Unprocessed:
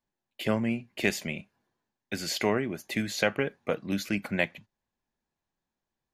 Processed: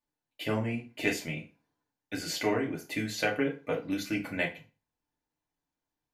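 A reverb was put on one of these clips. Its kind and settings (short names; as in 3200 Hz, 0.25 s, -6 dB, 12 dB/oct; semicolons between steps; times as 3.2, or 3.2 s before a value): FDN reverb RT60 0.34 s, low-frequency decay 0.95×, high-frequency decay 0.8×, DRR -2 dB; gain -6 dB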